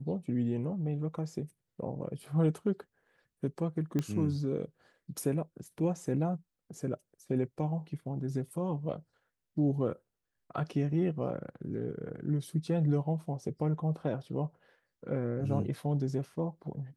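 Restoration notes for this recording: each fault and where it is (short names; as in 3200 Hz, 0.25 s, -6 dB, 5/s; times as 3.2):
3.99 pop -19 dBFS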